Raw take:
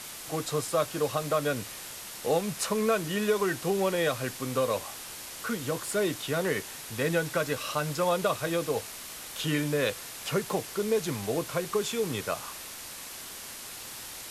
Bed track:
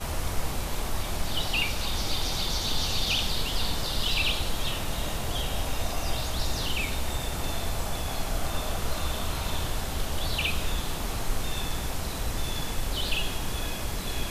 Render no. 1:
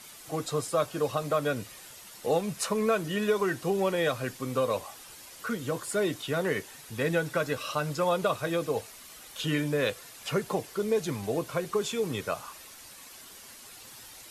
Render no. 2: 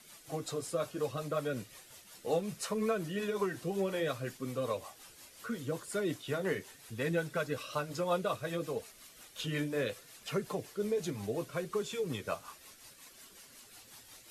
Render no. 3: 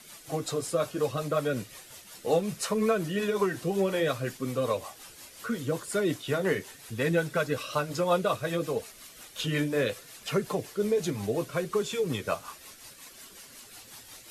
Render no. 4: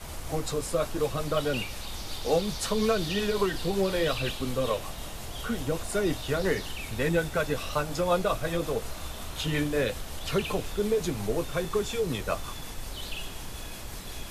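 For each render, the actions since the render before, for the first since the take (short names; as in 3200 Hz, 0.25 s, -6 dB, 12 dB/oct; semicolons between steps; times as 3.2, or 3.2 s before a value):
denoiser 9 dB, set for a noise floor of -42 dBFS
rotary speaker horn 5.5 Hz; flange 0.68 Hz, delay 4.3 ms, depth 7.6 ms, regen -49%
gain +6.5 dB
add bed track -8.5 dB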